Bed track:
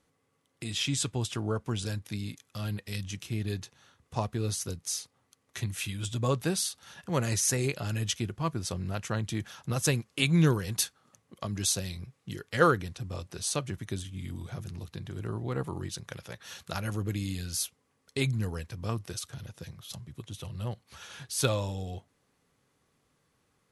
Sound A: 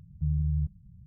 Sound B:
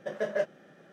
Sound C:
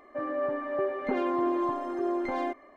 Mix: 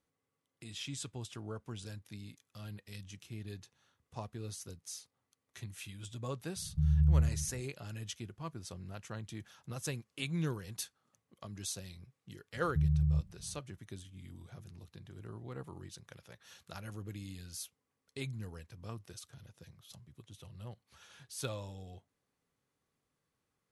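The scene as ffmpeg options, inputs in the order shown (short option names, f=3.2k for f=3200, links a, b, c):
-filter_complex "[1:a]asplit=2[a][b];[0:a]volume=-12dB[c];[a]aecho=1:1:64.14|224.5:0.708|0.355[d];[b]highpass=40[e];[d]atrim=end=1.06,asetpts=PTS-STARTPTS,volume=-2dB,afade=t=in:d=0.004:c=hsin,afade=t=out:st=1.056:d=0.004:c=hsin,adelay=6560[f];[e]atrim=end=1.06,asetpts=PTS-STARTPTS,volume=-1.5dB,afade=t=in:d=0.004:c=hsin,afade=t=out:st=1.056:d=0.004:c=hsin,adelay=12540[g];[c][f][g]amix=inputs=3:normalize=0"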